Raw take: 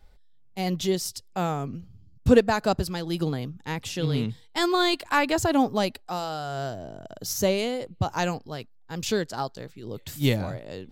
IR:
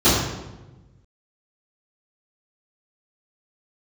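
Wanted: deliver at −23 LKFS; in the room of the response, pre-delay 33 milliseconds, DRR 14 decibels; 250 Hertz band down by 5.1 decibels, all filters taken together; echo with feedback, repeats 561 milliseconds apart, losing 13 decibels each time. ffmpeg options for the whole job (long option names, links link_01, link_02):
-filter_complex "[0:a]equalizer=frequency=250:width_type=o:gain=-7,aecho=1:1:561|1122|1683:0.224|0.0493|0.0108,asplit=2[link_01][link_02];[1:a]atrim=start_sample=2205,adelay=33[link_03];[link_02][link_03]afir=irnorm=-1:irlink=0,volume=-36.5dB[link_04];[link_01][link_04]amix=inputs=2:normalize=0,volume=5dB"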